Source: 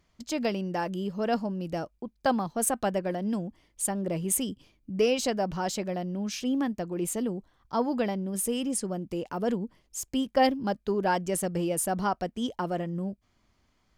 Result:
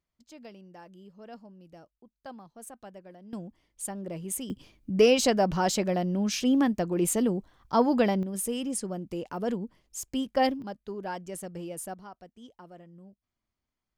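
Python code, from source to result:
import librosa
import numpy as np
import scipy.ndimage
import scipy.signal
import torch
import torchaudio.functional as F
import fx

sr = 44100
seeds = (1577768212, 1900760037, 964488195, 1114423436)

y = fx.gain(x, sr, db=fx.steps((0.0, -18.5), (3.33, -6.5), (4.5, 4.5), (8.23, -2.0), (10.62, -9.5), (11.94, -18.5)))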